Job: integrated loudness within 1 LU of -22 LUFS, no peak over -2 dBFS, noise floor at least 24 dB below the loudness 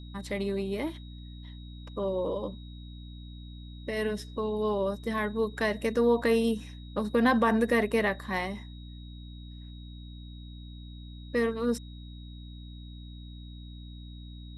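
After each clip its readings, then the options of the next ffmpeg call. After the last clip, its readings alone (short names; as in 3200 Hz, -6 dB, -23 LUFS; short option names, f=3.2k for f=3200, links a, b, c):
hum 60 Hz; harmonics up to 300 Hz; hum level -41 dBFS; steady tone 3800 Hz; tone level -54 dBFS; loudness -29.0 LUFS; peak -12.0 dBFS; loudness target -22.0 LUFS
-> -af "bandreject=f=60:t=h:w=6,bandreject=f=120:t=h:w=6,bandreject=f=180:t=h:w=6,bandreject=f=240:t=h:w=6,bandreject=f=300:t=h:w=6"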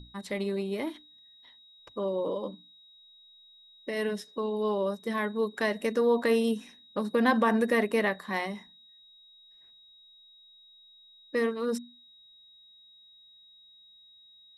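hum none; steady tone 3800 Hz; tone level -54 dBFS
-> -af "bandreject=f=3.8k:w=30"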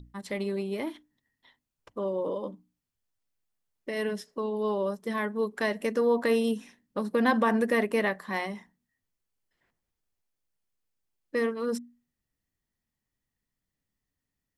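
steady tone none; loudness -29.5 LUFS; peak -12.0 dBFS; loudness target -22.0 LUFS
-> -af "volume=7.5dB"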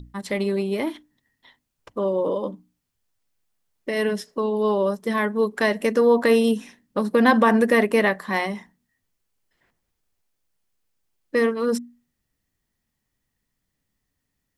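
loudness -22.0 LUFS; peak -4.5 dBFS; noise floor -79 dBFS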